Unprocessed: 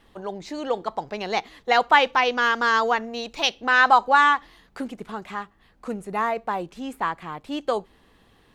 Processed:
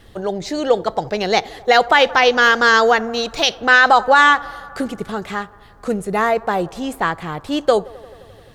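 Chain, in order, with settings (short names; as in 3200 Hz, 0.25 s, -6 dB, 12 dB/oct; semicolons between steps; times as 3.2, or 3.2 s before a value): fifteen-band EQ 100 Hz +7 dB, 250 Hz -5 dB, 1000 Hz -9 dB, 2500 Hz -5 dB; band-limited delay 87 ms, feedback 79%, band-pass 710 Hz, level -22 dB; maximiser +13 dB; gain -1 dB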